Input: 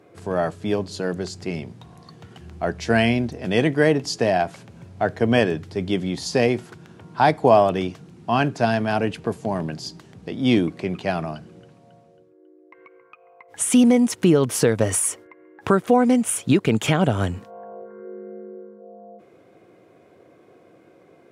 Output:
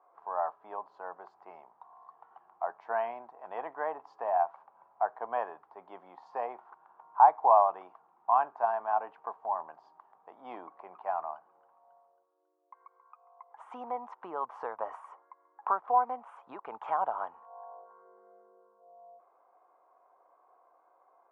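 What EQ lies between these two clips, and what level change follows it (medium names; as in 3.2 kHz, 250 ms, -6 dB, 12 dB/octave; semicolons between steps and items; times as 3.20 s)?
Butterworth band-pass 940 Hz, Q 2.5; +1.0 dB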